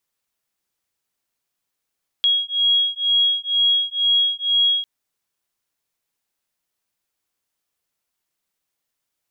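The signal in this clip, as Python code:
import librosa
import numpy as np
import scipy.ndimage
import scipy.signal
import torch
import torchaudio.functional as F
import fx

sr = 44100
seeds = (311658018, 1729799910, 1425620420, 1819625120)

y = fx.two_tone_beats(sr, length_s=2.6, hz=3300.0, beat_hz=2.1, level_db=-19.0)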